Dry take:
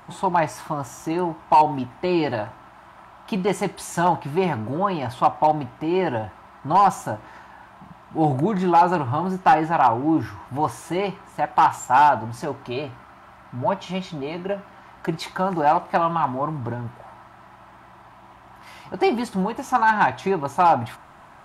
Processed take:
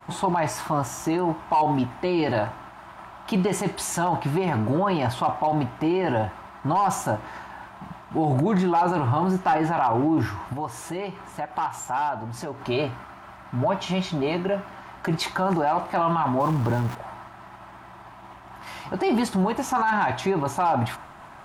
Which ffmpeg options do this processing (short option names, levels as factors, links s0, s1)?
-filter_complex "[0:a]asettb=1/sr,asplit=3[s0][s1][s2];[s0]atrim=end=10.534[s3];[s1]atrim=start=10.53:end=12.61,asetpts=PTS-STARTPTS,afade=t=in:d=0.004:c=qsin,afade=t=out:st=2.076:d=0.004:c=qsin,acompressor=threshold=0.00891:ratio=2:attack=3.2:release=140:knee=1:detection=peak[s4];[s2]atrim=start=12.606[s5];[s3][s4]acrossfade=d=0.004:c1=hsin:c2=qsin[s6];[s6][s5]acrossfade=d=0.004:c1=qsin:c2=hsin,asettb=1/sr,asplit=3[s7][s8][s9];[s7]atrim=end=16.404[s10];[s8]atrim=start=16.4:end=16.95,asetpts=PTS-STARTPTS,afade=t=in:d=0.004:c=qsin,afade=t=out:st=0.546:d=0.004:c=qsin,aeval=exprs='val(0)+0.5*0.0133*sgn(val(0))':c=same[s11];[s9]atrim=start=16.946[s12];[s10][s11]acrossfade=d=0.004:c1=hsin:c2=qsin[s13];[s13][s12]acrossfade=d=0.004:c1=qsin:c2=hsin,agate=range=0.0224:threshold=0.00631:ratio=3:detection=peak,alimiter=limit=0.1:level=0:latency=1:release=15,volume=1.78"